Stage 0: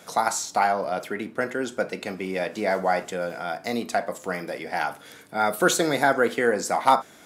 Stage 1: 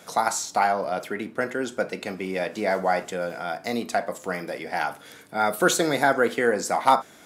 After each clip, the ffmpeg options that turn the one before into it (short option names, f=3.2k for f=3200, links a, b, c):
-af anull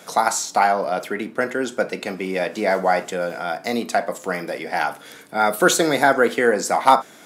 -af "highpass=140,volume=4.5dB"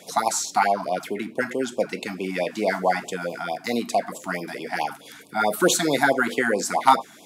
-af "afftfilt=real='re*(1-between(b*sr/1024,430*pow(1700/430,0.5+0.5*sin(2*PI*4.6*pts/sr))/1.41,430*pow(1700/430,0.5+0.5*sin(2*PI*4.6*pts/sr))*1.41))':imag='im*(1-between(b*sr/1024,430*pow(1700/430,0.5+0.5*sin(2*PI*4.6*pts/sr))/1.41,430*pow(1700/430,0.5+0.5*sin(2*PI*4.6*pts/sr))*1.41))':win_size=1024:overlap=0.75,volume=-1.5dB"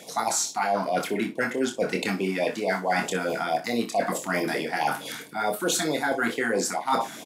-af "areverse,acompressor=threshold=-30dB:ratio=10,areverse,aecho=1:1:26|61:0.501|0.211,volume=7dB"